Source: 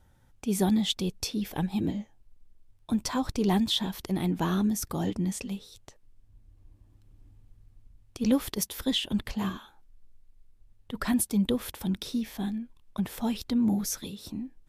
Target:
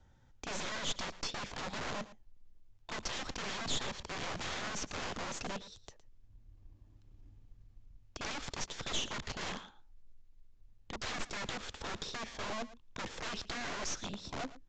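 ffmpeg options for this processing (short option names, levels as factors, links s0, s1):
-filter_complex "[0:a]acrossover=split=160|3000[s0][s1][s2];[s1]acompressor=threshold=0.0398:ratio=5[s3];[s0][s3][s2]amix=inputs=3:normalize=0,acrossover=split=2400[s4][s5];[s4]aeval=exprs='(mod(42.2*val(0)+1,2)-1)/42.2':c=same[s6];[s6][s5]amix=inputs=2:normalize=0,aeval=exprs='0.224*(cos(1*acos(clip(val(0)/0.224,-1,1)))-cos(1*PI/2))+0.0794*(cos(6*acos(clip(val(0)/0.224,-1,1)))-cos(6*PI/2))':c=same,asoftclip=type=tanh:threshold=0.0708,asplit=2[s7][s8];[s8]aecho=0:1:113:0.15[s9];[s7][s9]amix=inputs=2:normalize=0,aresample=16000,aresample=44100,volume=0.75"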